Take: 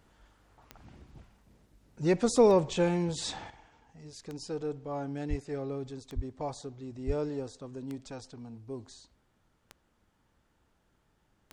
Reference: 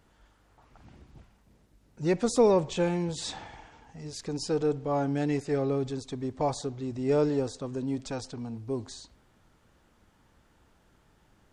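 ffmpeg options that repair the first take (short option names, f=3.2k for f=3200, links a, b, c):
-filter_complex "[0:a]adeclick=t=4,asplit=3[a][b][c];[a]afade=t=out:st=5.29:d=0.02[d];[b]highpass=f=140:w=0.5412,highpass=f=140:w=1.3066,afade=t=in:st=5.29:d=0.02,afade=t=out:st=5.41:d=0.02[e];[c]afade=t=in:st=5.41:d=0.02[f];[d][e][f]amix=inputs=3:normalize=0,asplit=3[g][h][i];[g]afade=t=out:st=6.15:d=0.02[j];[h]highpass=f=140:w=0.5412,highpass=f=140:w=1.3066,afade=t=in:st=6.15:d=0.02,afade=t=out:st=6.27:d=0.02[k];[i]afade=t=in:st=6.27:d=0.02[l];[j][k][l]amix=inputs=3:normalize=0,asplit=3[m][n][o];[m]afade=t=out:st=7.06:d=0.02[p];[n]highpass=f=140:w=0.5412,highpass=f=140:w=1.3066,afade=t=in:st=7.06:d=0.02,afade=t=out:st=7.18:d=0.02[q];[o]afade=t=in:st=7.18:d=0.02[r];[p][q][r]amix=inputs=3:normalize=0,asetnsamples=n=441:p=0,asendcmd='3.5 volume volume 8dB',volume=0dB"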